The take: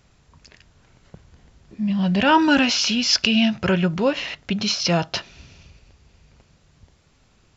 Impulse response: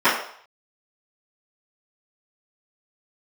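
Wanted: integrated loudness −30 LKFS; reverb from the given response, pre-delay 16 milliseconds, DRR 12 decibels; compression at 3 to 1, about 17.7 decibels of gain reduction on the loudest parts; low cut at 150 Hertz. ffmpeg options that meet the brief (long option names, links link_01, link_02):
-filter_complex "[0:a]highpass=150,acompressor=threshold=-37dB:ratio=3,asplit=2[link_01][link_02];[1:a]atrim=start_sample=2205,adelay=16[link_03];[link_02][link_03]afir=irnorm=-1:irlink=0,volume=-35dB[link_04];[link_01][link_04]amix=inputs=2:normalize=0,volume=4.5dB"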